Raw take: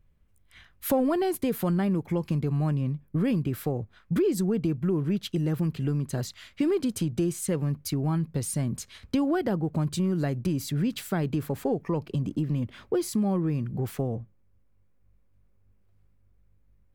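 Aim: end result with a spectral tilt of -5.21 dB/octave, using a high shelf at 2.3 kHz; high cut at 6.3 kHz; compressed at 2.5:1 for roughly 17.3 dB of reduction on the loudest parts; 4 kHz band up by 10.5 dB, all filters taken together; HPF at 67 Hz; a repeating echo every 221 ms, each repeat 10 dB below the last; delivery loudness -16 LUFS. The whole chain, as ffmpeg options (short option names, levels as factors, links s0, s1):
-af "highpass=67,lowpass=6300,highshelf=f=2300:g=7,equalizer=f=4000:t=o:g=7.5,acompressor=threshold=0.00398:ratio=2.5,aecho=1:1:221|442|663|884:0.316|0.101|0.0324|0.0104,volume=22.4"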